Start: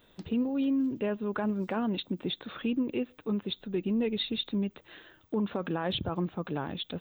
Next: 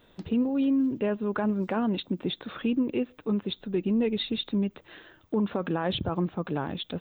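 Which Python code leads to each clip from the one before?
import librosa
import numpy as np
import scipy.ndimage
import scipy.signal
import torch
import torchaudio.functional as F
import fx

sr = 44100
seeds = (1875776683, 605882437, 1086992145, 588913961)

y = fx.high_shelf(x, sr, hz=3800.0, db=-6.5)
y = y * librosa.db_to_amplitude(3.5)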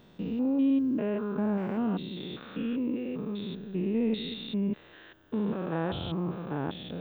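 y = fx.spec_steps(x, sr, hold_ms=200)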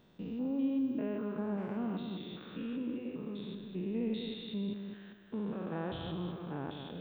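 y = fx.echo_feedback(x, sr, ms=203, feedback_pct=36, wet_db=-7.0)
y = y * librosa.db_to_amplitude(-7.5)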